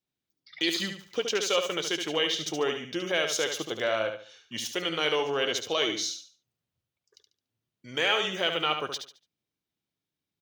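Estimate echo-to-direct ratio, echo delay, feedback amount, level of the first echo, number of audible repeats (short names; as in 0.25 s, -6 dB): -6.5 dB, 72 ms, 30%, -7.0 dB, 3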